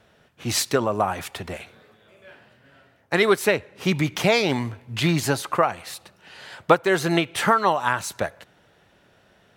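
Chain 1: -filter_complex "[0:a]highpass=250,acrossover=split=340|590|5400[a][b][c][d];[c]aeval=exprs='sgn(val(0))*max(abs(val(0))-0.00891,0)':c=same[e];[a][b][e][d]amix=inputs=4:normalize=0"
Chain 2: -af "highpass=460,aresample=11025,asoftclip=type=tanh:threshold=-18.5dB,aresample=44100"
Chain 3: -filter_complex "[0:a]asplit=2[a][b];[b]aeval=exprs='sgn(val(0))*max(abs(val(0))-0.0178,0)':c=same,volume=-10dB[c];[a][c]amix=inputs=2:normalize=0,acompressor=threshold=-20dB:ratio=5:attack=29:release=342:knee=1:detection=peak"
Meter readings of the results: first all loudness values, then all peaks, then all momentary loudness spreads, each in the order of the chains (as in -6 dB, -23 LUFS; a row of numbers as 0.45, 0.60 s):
-23.5, -28.0, -24.5 LUFS; -4.5, -14.5, -3.0 dBFS; 18, 15, 13 LU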